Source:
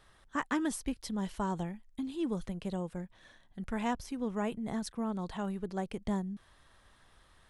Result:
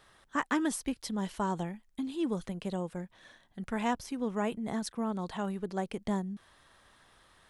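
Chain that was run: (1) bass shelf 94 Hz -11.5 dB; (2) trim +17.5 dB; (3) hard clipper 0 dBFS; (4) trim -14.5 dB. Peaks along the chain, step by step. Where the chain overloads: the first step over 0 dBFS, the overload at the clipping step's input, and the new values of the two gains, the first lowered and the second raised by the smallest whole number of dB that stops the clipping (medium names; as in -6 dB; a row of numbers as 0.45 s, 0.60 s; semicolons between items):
-19.5 dBFS, -2.0 dBFS, -2.0 dBFS, -16.5 dBFS; nothing clips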